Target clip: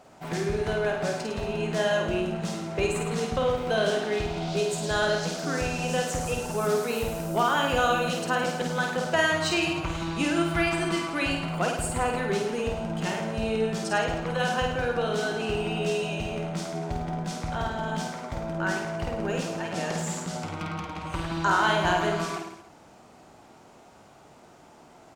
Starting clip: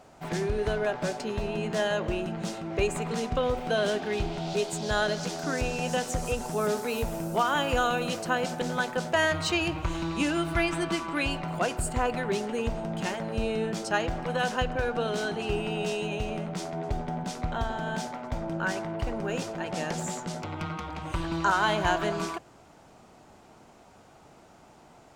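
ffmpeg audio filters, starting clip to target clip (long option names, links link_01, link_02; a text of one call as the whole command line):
ffmpeg -i in.wav -af "lowshelf=frequency=82:gain=-6.5,aecho=1:1:50|105|165.5|232|305.3:0.631|0.398|0.251|0.158|0.1" out.wav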